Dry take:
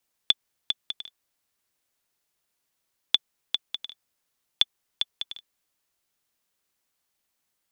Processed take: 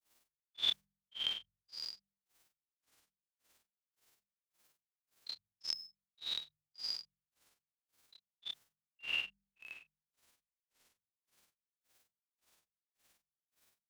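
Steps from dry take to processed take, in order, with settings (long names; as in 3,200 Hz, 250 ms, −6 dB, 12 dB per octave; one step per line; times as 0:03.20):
spectrum averaged block by block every 200 ms
granular cloud 168 ms, grains 3.2 per second, spray 10 ms, pitch spread up and down by 7 semitones
mains-hum notches 50/100/150/200 Hz
time stretch by overlap-add 1.8×, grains 115 ms
level +11.5 dB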